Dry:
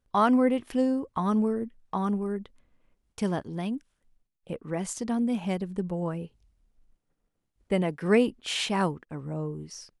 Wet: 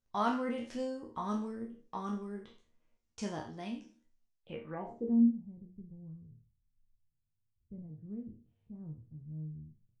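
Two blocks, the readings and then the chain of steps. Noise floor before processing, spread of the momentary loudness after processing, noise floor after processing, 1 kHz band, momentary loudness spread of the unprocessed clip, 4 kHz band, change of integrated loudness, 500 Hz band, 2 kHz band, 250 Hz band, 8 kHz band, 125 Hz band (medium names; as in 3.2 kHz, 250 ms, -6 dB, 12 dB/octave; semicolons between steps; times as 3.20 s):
-80 dBFS, 19 LU, -81 dBFS, -9.0 dB, 14 LU, under -15 dB, -8.5 dB, -13.5 dB, -13.5 dB, -8.0 dB, under -15 dB, -11.5 dB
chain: spectral sustain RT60 0.42 s; low-pass sweep 6.3 kHz -> 120 Hz, 4.32–5.39 s; chord resonator D#2 sus4, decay 0.25 s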